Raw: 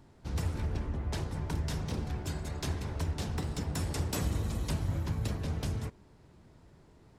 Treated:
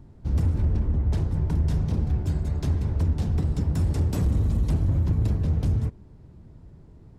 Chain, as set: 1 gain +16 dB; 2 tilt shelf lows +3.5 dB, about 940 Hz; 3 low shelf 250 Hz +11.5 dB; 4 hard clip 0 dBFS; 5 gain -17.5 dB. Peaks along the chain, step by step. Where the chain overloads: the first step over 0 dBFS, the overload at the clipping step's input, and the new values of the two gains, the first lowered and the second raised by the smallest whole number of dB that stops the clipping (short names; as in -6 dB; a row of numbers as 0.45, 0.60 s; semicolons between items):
-3.5, -0.5, +8.5, 0.0, -17.5 dBFS; step 3, 8.5 dB; step 1 +7 dB, step 5 -8.5 dB